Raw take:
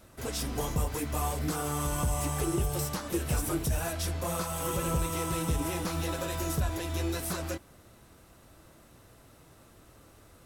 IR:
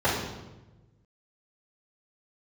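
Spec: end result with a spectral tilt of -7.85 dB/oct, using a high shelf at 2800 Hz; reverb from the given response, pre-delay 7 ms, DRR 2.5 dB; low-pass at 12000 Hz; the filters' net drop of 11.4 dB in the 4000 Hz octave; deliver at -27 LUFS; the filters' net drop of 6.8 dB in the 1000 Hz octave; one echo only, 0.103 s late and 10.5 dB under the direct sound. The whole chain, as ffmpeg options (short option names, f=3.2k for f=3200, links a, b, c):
-filter_complex "[0:a]lowpass=12k,equalizer=f=1k:t=o:g=-7.5,highshelf=f=2.8k:g=-8.5,equalizer=f=4k:t=o:g=-7.5,aecho=1:1:103:0.299,asplit=2[a][b];[1:a]atrim=start_sample=2205,adelay=7[c];[b][c]afir=irnorm=-1:irlink=0,volume=-18.5dB[d];[a][d]amix=inputs=2:normalize=0,volume=2.5dB"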